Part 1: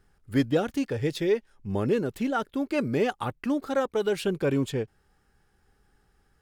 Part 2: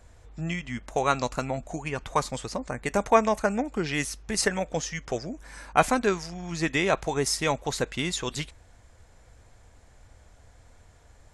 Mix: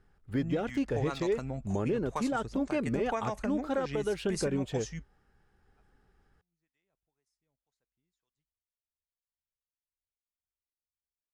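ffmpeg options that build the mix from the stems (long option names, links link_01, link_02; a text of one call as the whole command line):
ffmpeg -i stem1.wav -i stem2.wav -filter_complex "[0:a]lowpass=frequency=2700:poles=1,volume=-1.5dB,asplit=2[link_01][link_02];[1:a]lowshelf=frequency=210:gain=7,acrossover=split=500[link_03][link_04];[link_03]aeval=exprs='val(0)*(1-0.7/2+0.7/2*cos(2*PI*2*n/s))':channel_layout=same[link_05];[link_04]aeval=exprs='val(0)*(1-0.7/2-0.7/2*cos(2*PI*2*n/s))':channel_layout=same[link_06];[link_05][link_06]amix=inputs=2:normalize=0,volume=-6.5dB[link_07];[link_02]apad=whole_len=500070[link_08];[link_07][link_08]sidechaingate=range=-50dB:threshold=-54dB:ratio=16:detection=peak[link_09];[link_01][link_09]amix=inputs=2:normalize=0,alimiter=limit=-21.5dB:level=0:latency=1:release=135" out.wav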